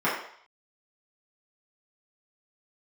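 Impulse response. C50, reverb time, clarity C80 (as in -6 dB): 3.5 dB, 0.60 s, 7.0 dB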